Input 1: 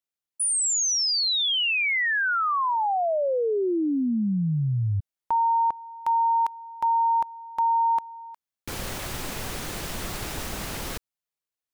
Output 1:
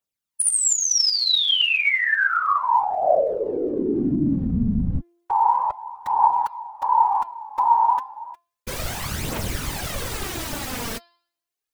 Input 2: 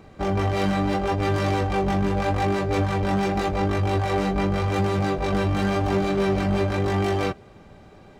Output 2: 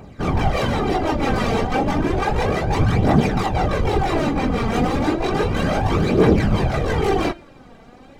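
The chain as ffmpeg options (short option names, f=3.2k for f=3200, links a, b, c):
-af "afftfilt=real='hypot(re,im)*cos(2*PI*random(0))':imag='hypot(re,im)*sin(2*PI*random(1))':win_size=512:overlap=0.75,bandreject=f=343.9:t=h:w=4,bandreject=f=687.8:t=h:w=4,bandreject=f=1.0317k:t=h:w=4,bandreject=f=1.3756k:t=h:w=4,bandreject=f=1.7195k:t=h:w=4,bandreject=f=2.0634k:t=h:w=4,bandreject=f=2.4073k:t=h:w=4,bandreject=f=2.7512k:t=h:w=4,bandreject=f=3.0951k:t=h:w=4,bandreject=f=3.439k:t=h:w=4,bandreject=f=3.7829k:t=h:w=4,bandreject=f=4.1268k:t=h:w=4,bandreject=f=4.4707k:t=h:w=4,bandreject=f=4.8146k:t=h:w=4,bandreject=f=5.1585k:t=h:w=4,aphaser=in_gain=1:out_gain=1:delay=4.5:decay=0.51:speed=0.32:type=triangular,volume=8.5dB"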